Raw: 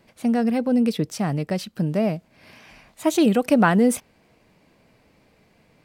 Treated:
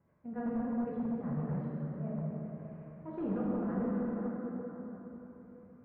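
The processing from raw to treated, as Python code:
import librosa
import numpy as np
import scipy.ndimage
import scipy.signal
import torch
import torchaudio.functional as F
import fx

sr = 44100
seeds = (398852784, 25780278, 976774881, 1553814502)

p1 = x + fx.echo_feedback(x, sr, ms=278, feedback_pct=46, wet_db=-19.0, dry=0)
p2 = fx.level_steps(p1, sr, step_db=10)
p3 = scipy.signal.sosfilt(scipy.signal.butter(2, 83.0, 'highpass', fs=sr, output='sos'), p2)
p4 = fx.peak_eq(p3, sr, hz=320.0, db=-14.5, octaves=2.5)
p5 = fx.auto_swell(p4, sr, attack_ms=210.0)
p6 = fx.peak_eq(p5, sr, hz=780.0, db=-11.0, octaves=0.72)
p7 = fx.rev_plate(p6, sr, seeds[0], rt60_s=4.0, hf_ratio=0.45, predelay_ms=0, drr_db=-6.5)
p8 = (np.mod(10.0 ** (26.5 / 20.0) * p7 + 1.0, 2.0) - 1.0) / 10.0 ** (26.5 / 20.0)
p9 = p7 + (p8 * librosa.db_to_amplitude(-7.0))
p10 = scipy.signal.sosfilt(scipy.signal.butter(4, 1100.0, 'lowpass', fs=sr, output='sos'), p9)
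y = p10 * librosa.db_to_amplitude(-4.0)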